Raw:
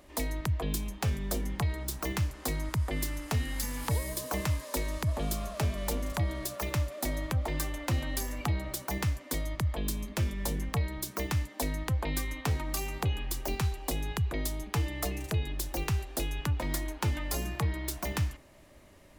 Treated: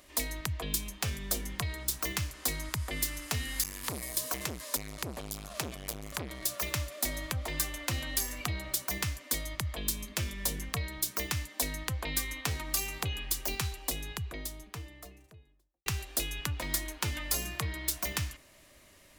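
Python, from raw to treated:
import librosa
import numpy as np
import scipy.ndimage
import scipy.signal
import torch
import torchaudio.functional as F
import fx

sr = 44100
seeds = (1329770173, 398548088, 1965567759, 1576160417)

y = fx.transformer_sat(x, sr, knee_hz=460.0, at=(3.63, 6.48))
y = fx.studio_fade_out(y, sr, start_s=13.5, length_s=2.36)
y = fx.tilt_shelf(y, sr, db=-6.0, hz=1400.0)
y = fx.notch(y, sr, hz=850.0, q=12.0)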